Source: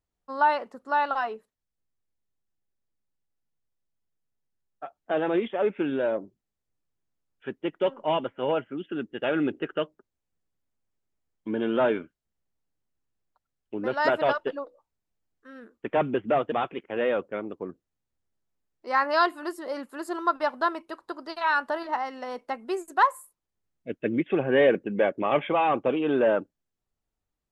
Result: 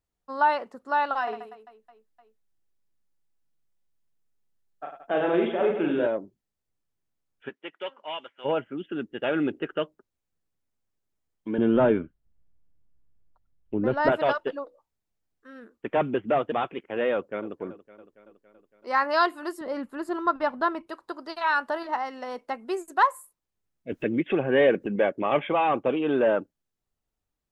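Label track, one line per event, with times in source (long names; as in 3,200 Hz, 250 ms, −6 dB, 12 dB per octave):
1.230000	6.070000	reverse bouncing-ball delay first gap 40 ms, each gap 1.4×, echoes 7
7.480000	8.440000	resonant band-pass 1,900 Hz → 5,100 Hz, Q 0.65
11.580000	14.120000	RIAA equalisation playback
17.140000	17.590000	delay throw 280 ms, feedback 65%, level −16 dB
19.610000	20.870000	bass and treble bass +11 dB, treble −8 dB
23.920000	24.960000	upward compression, threshold −23 dBFS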